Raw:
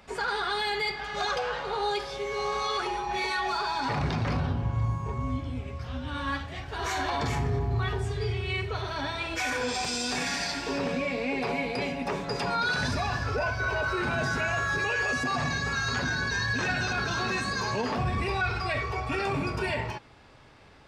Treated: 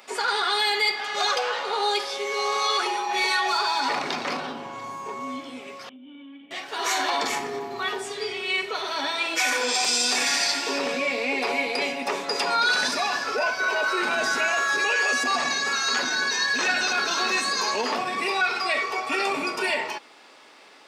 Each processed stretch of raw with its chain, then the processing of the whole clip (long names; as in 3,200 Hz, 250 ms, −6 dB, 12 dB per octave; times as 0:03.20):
0:05.89–0:06.51: formant resonators in series i + parametric band 690 Hz +6 dB 2.1 octaves + downward compressor, threshold −41 dBFS
whole clip: high-pass filter 250 Hz 24 dB per octave; spectral tilt +2 dB per octave; notch filter 1,600 Hz, Q 17; level +5 dB